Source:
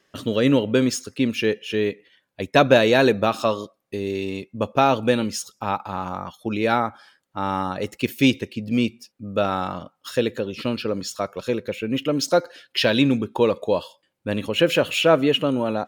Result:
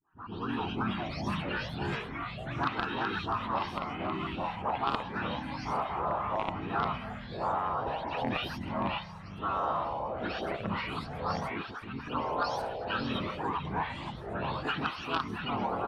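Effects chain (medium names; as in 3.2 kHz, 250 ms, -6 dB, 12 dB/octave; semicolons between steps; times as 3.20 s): delay that grows with frequency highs late, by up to 350 ms; transient shaper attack -9 dB, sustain +5 dB; graphic EQ 125/250/500/1000/2000/4000 Hz -7/-8/-6/+8/+3/-7 dB; harmony voices -12 st -9 dB, -3 st 0 dB, +7 st -18 dB; band-stop 3.5 kHz, Q 26; Chebyshev shaper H 3 -7 dB, 5 -19 dB, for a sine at -1 dBFS; low-pass 5.7 kHz 12 dB/octave; peaking EQ 400 Hz +4 dB 2.4 oct; static phaser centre 2.1 kHz, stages 6; compression 4:1, threshold -35 dBFS, peak gain reduction 14.5 dB; ever faster or slower copies 255 ms, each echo -4 st, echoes 3; trim +5.5 dB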